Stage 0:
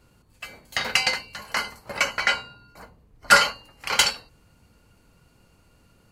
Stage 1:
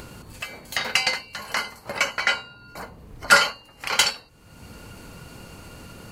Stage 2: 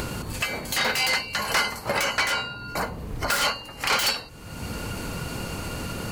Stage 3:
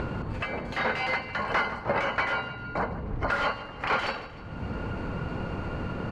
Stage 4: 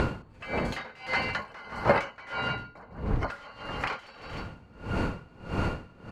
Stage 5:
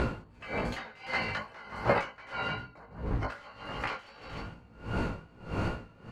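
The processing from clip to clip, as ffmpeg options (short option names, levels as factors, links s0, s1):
-af "lowshelf=f=66:g=-7,acompressor=mode=upward:threshold=0.0501:ratio=2.5"
-filter_complex "[0:a]asplit=2[s0][s1];[s1]aeval=exprs='0.668*sin(PI/2*7.94*val(0)/0.668)':c=same,volume=0.299[s2];[s0][s2]amix=inputs=2:normalize=0,alimiter=limit=0.211:level=0:latency=1:release=139,volume=0.708"
-af "lowpass=1700,aecho=1:1:153|306|459|612:0.178|0.0836|0.0393|0.0185"
-af "highshelf=f=5200:g=10.5,aeval=exprs='val(0)*pow(10,-28*(0.5-0.5*cos(2*PI*1.6*n/s))/20)':c=same,volume=2.11"
-af "flanger=delay=16.5:depth=2.9:speed=2.6"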